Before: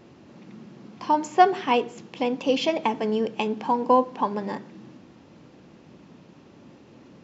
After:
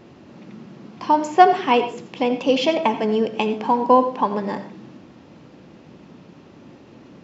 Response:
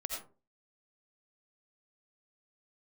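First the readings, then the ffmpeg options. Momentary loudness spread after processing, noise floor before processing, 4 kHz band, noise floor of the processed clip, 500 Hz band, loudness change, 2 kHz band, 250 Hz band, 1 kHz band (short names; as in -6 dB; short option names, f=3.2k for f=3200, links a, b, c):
12 LU, -52 dBFS, +4.0 dB, -47 dBFS, +5.0 dB, +4.5 dB, +4.5 dB, +4.5 dB, +5.0 dB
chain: -filter_complex "[0:a]asplit=2[a][b];[1:a]atrim=start_sample=2205,lowpass=6.2k[c];[b][c]afir=irnorm=-1:irlink=0,volume=-5.5dB[d];[a][d]amix=inputs=2:normalize=0,volume=1.5dB"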